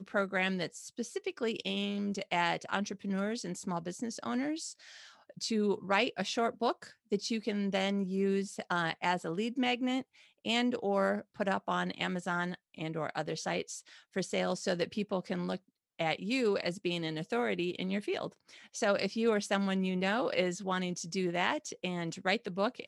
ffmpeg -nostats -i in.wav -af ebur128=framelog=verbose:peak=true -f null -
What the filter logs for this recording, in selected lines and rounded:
Integrated loudness:
  I:         -33.6 LUFS
  Threshold: -43.8 LUFS
Loudness range:
  LRA:         3.2 LU
  Threshold: -53.8 LUFS
  LRA low:   -35.7 LUFS
  LRA high:  -32.5 LUFS
True peak:
  Peak:      -13.3 dBFS